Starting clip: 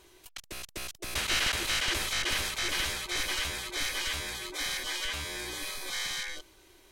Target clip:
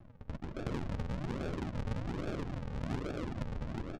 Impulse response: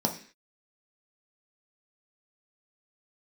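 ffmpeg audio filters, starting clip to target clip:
-af "bass=frequency=250:gain=-6,treble=frequency=4000:gain=9,aecho=1:1:220|396|536.8|649.4|739.6:0.631|0.398|0.251|0.158|0.1,acompressor=threshold=-35dB:ratio=6,asetrate=76440,aresample=44100,aresample=16000,acrusher=samples=32:mix=1:aa=0.000001:lfo=1:lforange=32:lforate=1.2,aresample=44100,adynamicsmooth=sensitivity=6.5:basefreq=1800,volume=4dB"

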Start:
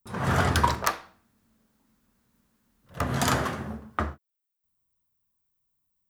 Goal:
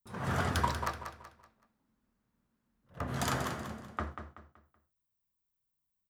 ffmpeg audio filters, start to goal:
ffmpeg -i in.wav -filter_complex "[0:a]asettb=1/sr,asplit=3[link_01][link_02][link_03];[link_01]atrim=end=0.834[link_04];[link_02]atrim=start=0.83:end=3.08,asetpts=PTS-STARTPTS,afade=type=in:duration=0.004:curve=qsin,afade=type=out:start_time=2.246:duration=0.004:curve=qsin,highshelf=frequency=3100:gain=-10[link_05];[link_03]atrim=start=3.076[link_06];[link_04][link_05]acrossfade=duration=0.004:curve1=hsin:curve2=qsin[link_07];[link_07][link_06]acrossfade=duration=0.004:curve1=qsin:curve2=hsin,asettb=1/sr,asplit=3[link_08][link_09][link_10];[link_08]atrim=end=3.714[link_11];[link_09]atrim=start=3.71:end=4.11,asetpts=PTS-STARTPTS,afade=type=in:duration=0.004:curve=qsin,afade=type=out:start_time=0.396:duration=0.004:curve=qsin,lowpass=8700[link_12];[link_10]atrim=start=4.106[link_13];[link_11][link_12]acrossfade=duration=0.004:curve1=hsin:curve2=qsin[link_14];[link_14][link_13]acrossfade=duration=0.004:curve1=qsin:curve2=hsin,aecho=1:1:189|378|567|756:0.376|0.132|0.046|0.0161,volume=-8.5dB" out.wav

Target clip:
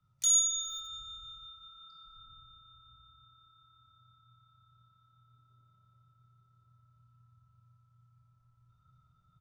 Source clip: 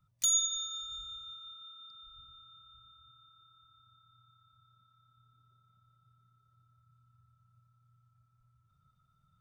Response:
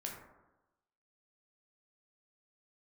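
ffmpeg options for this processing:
-filter_complex "[0:a]asplit=3[link_01][link_02][link_03];[link_01]afade=type=out:start_time=1.55:duration=0.02[link_04];[link_02]aecho=1:1:5.9:0.84,afade=type=in:start_time=1.55:duration=0.02,afade=type=out:start_time=2.17:duration=0.02[link_05];[link_03]afade=type=in:start_time=2.17:duration=0.02[link_06];[link_04][link_05][link_06]amix=inputs=3:normalize=0[link_07];[1:a]atrim=start_sample=2205,asetrate=26460,aresample=44100[link_08];[link_07][link_08]afir=irnorm=-1:irlink=0,acrossover=split=120|630|7900[link_09][link_10][link_11][link_12];[link_12]aeval=exprs='val(0)*gte(abs(val(0)),0.00141)':channel_layout=same[link_13];[link_09][link_10][link_11][link_13]amix=inputs=4:normalize=0"

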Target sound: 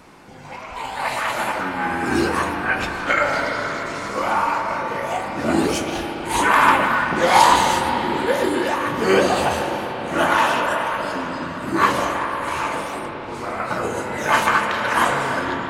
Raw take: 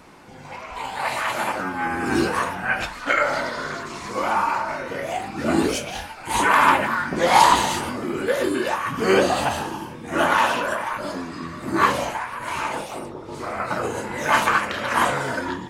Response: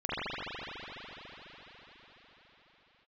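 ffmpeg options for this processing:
-filter_complex "[0:a]asplit=2[link_01][link_02];[1:a]atrim=start_sample=2205,asetrate=48510,aresample=44100,adelay=83[link_03];[link_02][link_03]afir=irnorm=-1:irlink=0,volume=-16dB[link_04];[link_01][link_04]amix=inputs=2:normalize=0,volume=1dB"

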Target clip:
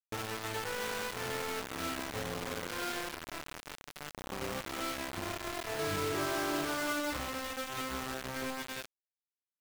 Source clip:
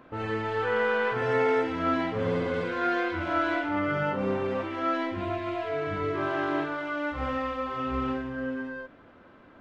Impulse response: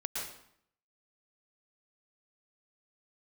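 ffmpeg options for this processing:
-filter_complex "[0:a]acompressor=threshold=-37dB:ratio=6,asettb=1/sr,asplit=3[link_01][link_02][link_03];[link_01]atrim=end=3.154[link_04];[link_02]atrim=start=3.15:end=4.32,asetpts=PTS-STARTPTS,afade=type=in:duration=0.004:curve=qsin,afade=type=out:start_time=1.166:duration=0.004:curve=qsin,aeval=exprs='(tanh(79.4*val(0)+0.5)-tanh(0.5))/79.4':channel_layout=same[link_05];[link_03]atrim=start=4.316[link_06];[link_04][link_05]acrossfade=duration=0.004:curve1=hsin:curve2=qsin[link_07];[link_07][link_06]acrossfade=duration=0.004:curve1=qsin:curve2=hsin,asettb=1/sr,asplit=3[link_08][link_09][link_10];[link_08]atrim=end=5.794[link_11];[link_09]atrim=start=5.79:end=7.17,asetpts=PTS-STARTPTS,afade=type=in:duration=0.004:curve=qsin,afade=type=out:start_time=1.376:duration=0.004:curve=qsin,acontrast=23[link_12];[link_10]atrim=start=7.166[link_13];[link_11][link_12]acrossfade=duration=0.004:curve1=hsin:curve2=qsin[link_14];[link_14][link_13]acrossfade=duration=0.004:curve1=qsin:curve2=hsin,acrusher=bits=5:mix=0:aa=0.000001"

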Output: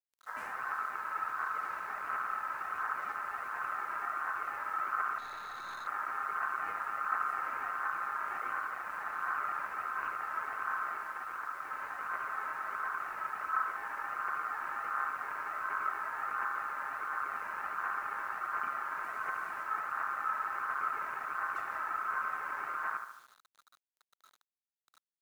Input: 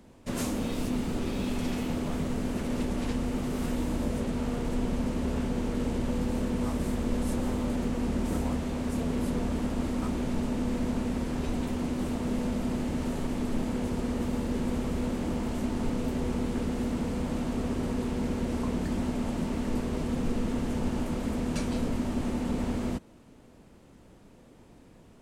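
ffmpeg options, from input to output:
ffmpeg -i in.wav -filter_complex "[0:a]asettb=1/sr,asplit=3[link_01][link_02][link_03];[link_01]atrim=end=19.034[link_04];[link_02]atrim=start=19.03:end=19.63,asetpts=PTS-STARTPTS,afade=type=in:duration=0.004:curve=qsin,afade=type=out:start_time=0.596:duration=0.004:curve=qsin,aemphasis=mode=production:type=50fm[link_05];[link_03]atrim=start=19.626[link_06];[link_04][link_05]acrossfade=duration=0.004:curve1=hsin:curve2=qsin[link_07];[link_07][link_06]acrossfade=duration=0.004:curve1=qsin:curve2=hsin,afwtdn=0.0126,aphaser=in_gain=1:out_gain=1:delay=3.1:decay=0.46:speed=1.4:type=triangular,asettb=1/sr,asplit=3[link_08][link_09][link_10];[link_08]atrim=end=10.934[link_11];[link_09]atrim=start=10.93:end=11.71,asetpts=PTS-STARTPTS,afade=type=in:duration=0.004:curve=qsin,afade=type=out:start_time=0.776:duration=0.004:curve=qsin,acompressor=threshold=-27dB:ratio=6[link_12];[link_10]atrim=start=11.706[link_13];[link_11][link_12]acrossfade=duration=0.004:curve1=hsin:curve2=qsin[link_14];[link_14][link_13]acrossfade=duration=0.004:curve1=qsin:curve2=hsin,bandreject=frequency=50:width_type=h:width=6,bandreject=frequency=100:width_type=h:width=6,bandreject=frequency=150:width_type=h:width=6,bandreject=frequency=200:width_type=h:width=6,bandreject=frequency=250:width_type=h:width=6,bandreject=frequency=300:width_type=h:width=6,bandreject=frequency=350:width_type=h:width=6,bandreject=frequency=400:width_type=h:width=6,bandreject=frequency=450:width_type=h:width=6,asplit=2[link_15][link_16];[link_16]adelay=72,lowpass=frequency=1200:poles=1,volume=-6.5dB,asplit=2[link_17][link_18];[link_18]adelay=72,lowpass=frequency=1200:poles=1,volume=0.53,asplit=2[link_19][link_20];[link_20]adelay=72,lowpass=frequency=1200:poles=1,volume=0.53,asplit=2[link_21][link_22];[link_22]adelay=72,lowpass=frequency=1200:poles=1,volume=0.53,asplit=2[link_23][link_24];[link_24]adelay=72,lowpass=frequency=1200:poles=1,volume=0.53,asplit=2[link_25][link_26];[link_26]adelay=72,lowpass=frequency=1200:poles=1,volume=0.53,asplit=2[link_27][link_28];[link_28]adelay=72,lowpass=frequency=1200:poles=1,volume=0.53[link_29];[link_15][link_17][link_19][link_21][link_23][link_25][link_27][link_29]amix=inputs=8:normalize=0,aeval=exprs='val(0)*sin(2*PI*1300*n/s)':channel_layout=same,acrusher=bits=8:mix=0:aa=0.000001,lowshelf=frequency=180:gain=-9.5,asettb=1/sr,asplit=3[link_30][link_31][link_32];[link_30]atrim=end=5.184[link_33];[link_31]atrim=start=5.18:end=5.87,asetpts=PTS-STARTPTS,afade=type=in:duration=0.004:curve=qsin,afade=type=out:start_time=0.686:duration=0.004:curve=qsin,aeval=exprs='(tanh(44.7*val(0)+0.1)-tanh(0.1))/44.7':channel_layout=same[link_34];[link_32]atrim=start=5.866[link_35];[link_33][link_34]acrossfade=duration=0.004:curve1=hsin:curve2=qsin[link_36];[link_36][link_35]acrossfade=duration=0.004:curve1=qsin:curve2=hsin,volume=-6dB" out.wav

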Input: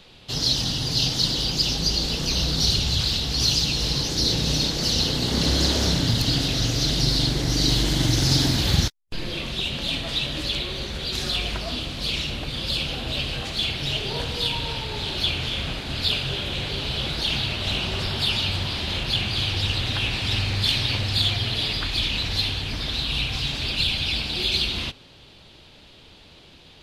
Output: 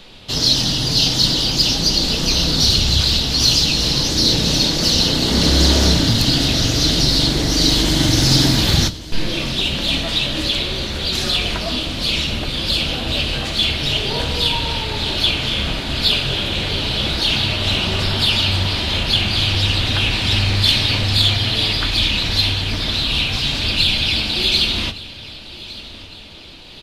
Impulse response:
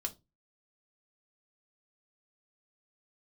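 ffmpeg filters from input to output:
-filter_complex "[0:a]acontrast=75,aecho=1:1:1161|2322|3483|4644:0.126|0.0592|0.0278|0.0131,asplit=2[link_01][link_02];[1:a]atrim=start_sample=2205[link_03];[link_02][link_03]afir=irnorm=-1:irlink=0,volume=1.5dB[link_04];[link_01][link_04]amix=inputs=2:normalize=0,volume=-6dB"

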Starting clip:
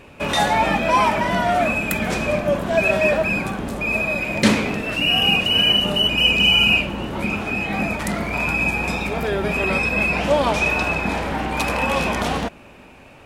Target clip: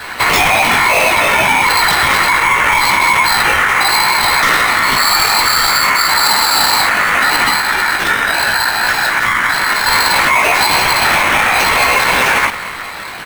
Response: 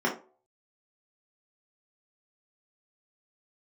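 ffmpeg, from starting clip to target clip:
-filter_complex "[0:a]asettb=1/sr,asplit=3[link_01][link_02][link_03];[link_01]atrim=end=7.594[link_04];[link_02]atrim=start=7.59:end=9.88,asetpts=PTS-STARTPTS,afade=type=in:duration=0.004:curve=qsin,afade=type=out:start_time=2.286:duration=0.004:curve=qsin,acrossover=split=200|5900[link_05][link_06][link_07];[link_05]acompressor=threshold=-34dB:ratio=4[link_08];[link_06]acompressor=threshold=-36dB:ratio=4[link_09];[link_07]acompressor=threshold=-43dB:ratio=4[link_10];[link_08][link_09][link_10]amix=inputs=3:normalize=0[link_11];[link_03]atrim=start=9.876[link_12];[link_04][link_11]acrossfade=duration=0.004:curve1=hsin:curve2=qsin[link_13];[link_13][link_12]acrossfade=duration=0.004:curve1=qsin:curve2=hsin,afftfilt=real='hypot(re,im)*cos(2*PI*random(0))':imag='hypot(re,im)*sin(2*PI*random(1))':win_size=512:overlap=0.75,asoftclip=type=tanh:threshold=-25dB,aecho=1:1:180:0.0841,adynamicequalizer=threshold=0.00562:dfrequency=530:dqfactor=1.8:tfrequency=530:tqfactor=1.8:attack=5:release=100:ratio=0.375:range=2.5:mode=boostabove:tftype=bell,flanger=delay=15.5:depth=4.3:speed=0.66,acompressor=threshold=-32dB:ratio=12,equalizer=frequency=3200:width=4:gain=-6.5,acrusher=samples=5:mix=1:aa=0.000001,aeval=exprs='val(0)*sin(2*PI*1600*n/s)':channel_layout=same,alimiter=level_in=32dB:limit=-1dB:release=50:level=0:latency=1,volume=-1dB"

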